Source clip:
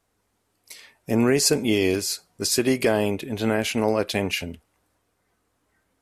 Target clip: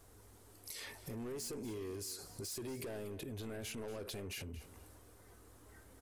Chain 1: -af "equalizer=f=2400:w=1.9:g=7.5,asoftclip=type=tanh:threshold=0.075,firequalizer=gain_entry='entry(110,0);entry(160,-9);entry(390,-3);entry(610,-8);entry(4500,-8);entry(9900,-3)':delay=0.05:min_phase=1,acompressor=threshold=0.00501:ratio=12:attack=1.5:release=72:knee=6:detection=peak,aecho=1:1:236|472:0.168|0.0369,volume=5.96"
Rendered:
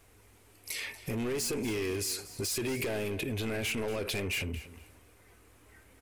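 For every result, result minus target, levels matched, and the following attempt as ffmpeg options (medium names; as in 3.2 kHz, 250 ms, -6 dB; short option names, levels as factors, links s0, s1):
compression: peak gain reduction -11 dB; 2 kHz band +4.5 dB
-af "equalizer=f=2400:w=1.9:g=7.5,asoftclip=type=tanh:threshold=0.075,firequalizer=gain_entry='entry(110,0);entry(160,-9);entry(390,-3);entry(610,-8);entry(4500,-8);entry(9900,-3)':delay=0.05:min_phase=1,acompressor=threshold=0.00133:ratio=12:attack=1.5:release=72:knee=6:detection=peak,aecho=1:1:236|472:0.168|0.0369,volume=5.96"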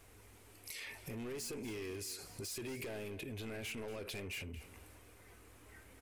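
2 kHz band +5.0 dB
-af "equalizer=f=2400:w=1.9:g=-4,asoftclip=type=tanh:threshold=0.075,firequalizer=gain_entry='entry(110,0);entry(160,-9);entry(390,-3);entry(610,-8);entry(4500,-8);entry(9900,-3)':delay=0.05:min_phase=1,acompressor=threshold=0.00133:ratio=12:attack=1.5:release=72:knee=6:detection=peak,aecho=1:1:236|472:0.168|0.0369,volume=5.96"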